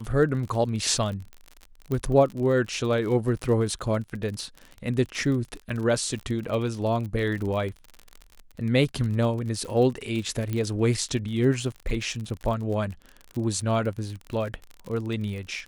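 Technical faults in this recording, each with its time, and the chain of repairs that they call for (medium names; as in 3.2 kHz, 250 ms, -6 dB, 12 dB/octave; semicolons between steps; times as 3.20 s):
crackle 42 per s -32 dBFS
1.92 s: pop -18 dBFS
10.53 s: pop -17 dBFS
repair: de-click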